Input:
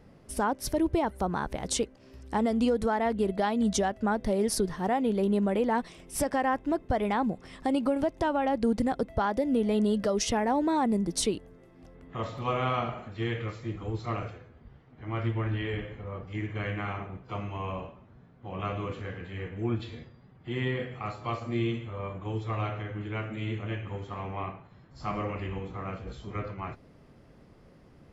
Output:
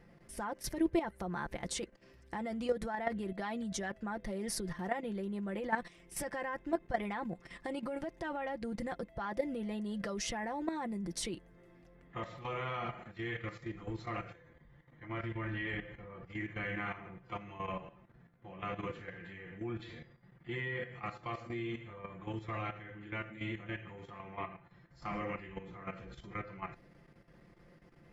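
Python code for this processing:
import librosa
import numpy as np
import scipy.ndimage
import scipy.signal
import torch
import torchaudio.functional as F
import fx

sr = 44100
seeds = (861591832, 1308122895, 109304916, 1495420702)

y = fx.ripple_eq(x, sr, per_octave=1.1, db=7, at=(14.34, 15.05))
y = fx.peak_eq(y, sr, hz=1900.0, db=8.0, octaves=0.63)
y = y + 0.57 * np.pad(y, (int(5.8 * sr / 1000.0), 0))[:len(y)]
y = fx.level_steps(y, sr, step_db=11)
y = y * librosa.db_to_amplitude(-5.0)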